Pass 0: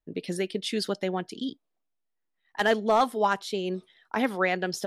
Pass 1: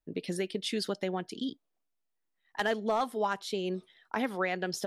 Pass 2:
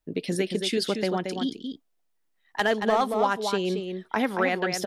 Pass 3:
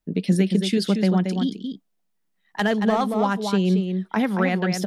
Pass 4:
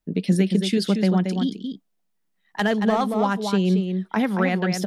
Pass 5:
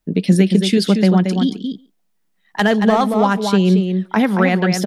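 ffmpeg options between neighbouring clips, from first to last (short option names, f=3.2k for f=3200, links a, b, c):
-af "acompressor=threshold=-28dB:ratio=2,volume=-1.5dB"
-filter_complex "[0:a]asplit=2[a][b];[b]adelay=227.4,volume=-6dB,highshelf=f=4k:g=-5.12[c];[a][c]amix=inputs=2:normalize=0,volume=6dB"
-af "equalizer=f=190:w=2.7:g=14"
-af anull
-filter_complex "[0:a]asplit=2[a][b];[b]adelay=140,highpass=300,lowpass=3.4k,asoftclip=type=hard:threshold=-16dB,volume=-23dB[c];[a][c]amix=inputs=2:normalize=0,volume=6.5dB"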